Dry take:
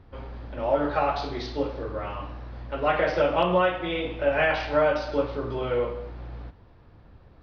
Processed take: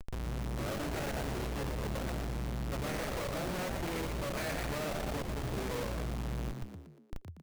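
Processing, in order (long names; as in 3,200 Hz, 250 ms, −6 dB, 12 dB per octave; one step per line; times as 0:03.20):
lower of the sound and its delayed copy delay 0.47 ms
low-pass filter 4,700 Hz
parametric band 320 Hz −3.5 dB 1.6 octaves
hum removal 113.6 Hz, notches 3
downward compressor 5 to 1, threshold −40 dBFS, peak gain reduction 17.5 dB
comparator with hysteresis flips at −44 dBFS
echo with shifted repeats 118 ms, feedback 45%, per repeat +73 Hz, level −6.5 dB
level +6 dB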